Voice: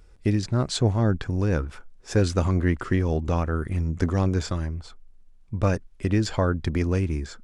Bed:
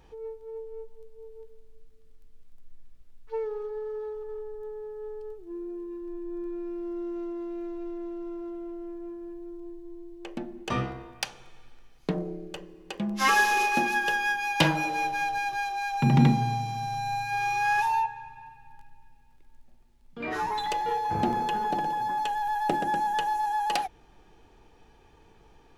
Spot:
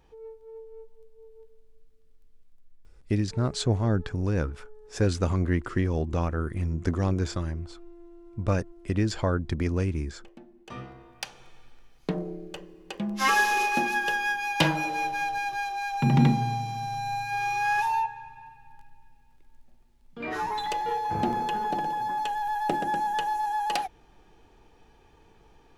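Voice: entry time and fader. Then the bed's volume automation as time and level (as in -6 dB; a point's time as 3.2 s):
2.85 s, -3.0 dB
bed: 2.33 s -5 dB
3.33 s -13.5 dB
10.63 s -13.5 dB
11.45 s -0.5 dB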